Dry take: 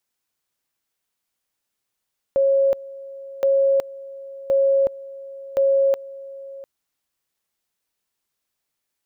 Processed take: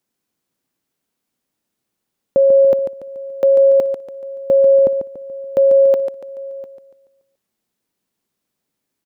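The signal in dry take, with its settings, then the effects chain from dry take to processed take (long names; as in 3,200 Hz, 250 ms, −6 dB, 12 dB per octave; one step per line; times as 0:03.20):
tone at two levels in turn 547 Hz −14 dBFS, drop 19.5 dB, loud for 0.37 s, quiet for 0.70 s, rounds 4
parametric band 230 Hz +13.5 dB 2.3 octaves
on a send: repeating echo 143 ms, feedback 42%, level −8 dB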